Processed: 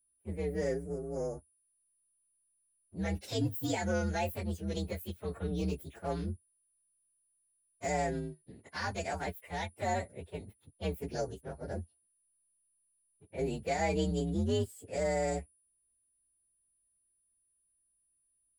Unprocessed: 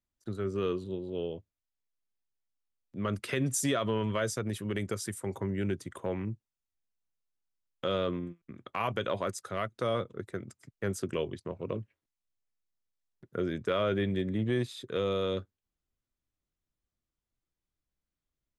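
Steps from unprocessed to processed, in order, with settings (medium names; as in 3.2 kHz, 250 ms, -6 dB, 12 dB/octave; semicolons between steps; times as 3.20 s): frequency axis rescaled in octaves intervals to 129%; 5.52–7.90 s: treble shelf 11 kHz +11.5 dB; whistle 9.8 kHz -64 dBFS; tape noise reduction on one side only decoder only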